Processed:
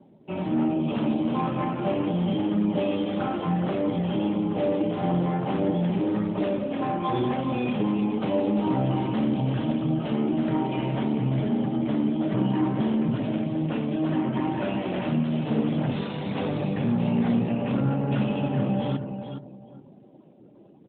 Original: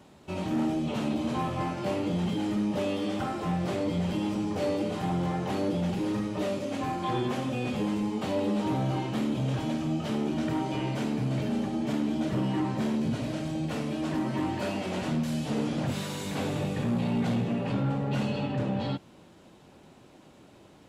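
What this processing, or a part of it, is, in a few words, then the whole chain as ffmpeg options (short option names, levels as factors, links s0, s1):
mobile call with aggressive noise cancelling: -filter_complex "[0:a]asplit=3[s0][s1][s2];[s0]afade=t=out:st=10.95:d=0.02[s3];[s1]bandreject=f=2700:w=21,afade=t=in:st=10.95:d=0.02,afade=t=out:st=12.09:d=0.02[s4];[s2]afade=t=in:st=12.09:d=0.02[s5];[s3][s4][s5]amix=inputs=3:normalize=0,highpass=f=110:w=0.5412,highpass=f=110:w=1.3066,aecho=1:1:417|834|1251:0.376|0.101|0.0274,afftdn=nr=17:nf=-50,volume=1.58" -ar 8000 -c:a libopencore_amrnb -b:a 12200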